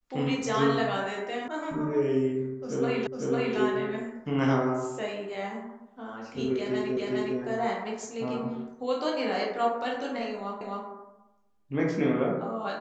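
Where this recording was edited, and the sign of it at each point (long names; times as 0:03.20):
0:01.48: cut off before it has died away
0:03.07: the same again, the last 0.5 s
0:06.97: the same again, the last 0.41 s
0:10.61: the same again, the last 0.26 s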